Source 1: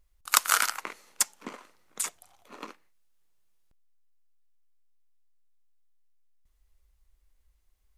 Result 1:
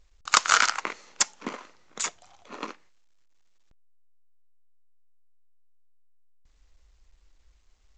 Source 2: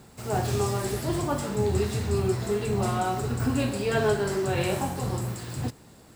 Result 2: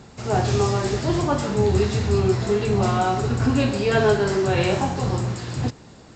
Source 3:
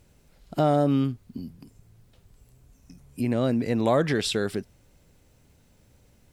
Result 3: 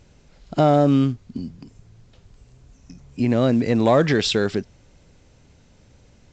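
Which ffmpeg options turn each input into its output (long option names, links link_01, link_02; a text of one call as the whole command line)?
ffmpeg -i in.wav -af "acontrast=83,volume=-1dB" -ar 16000 -c:a pcm_alaw out.wav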